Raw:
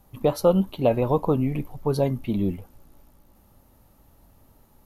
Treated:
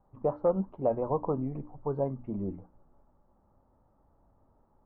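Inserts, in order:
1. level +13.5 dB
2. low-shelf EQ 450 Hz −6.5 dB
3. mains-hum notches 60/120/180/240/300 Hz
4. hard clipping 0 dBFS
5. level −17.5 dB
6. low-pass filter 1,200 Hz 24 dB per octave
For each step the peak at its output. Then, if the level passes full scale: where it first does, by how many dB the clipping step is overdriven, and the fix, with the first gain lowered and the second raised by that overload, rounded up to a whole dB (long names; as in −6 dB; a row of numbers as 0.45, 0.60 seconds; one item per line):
+5.5, +4.0, +4.0, 0.0, −17.5, −16.0 dBFS
step 1, 4.0 dB
step 1 +9.5 dB, step 5 −13.5 dB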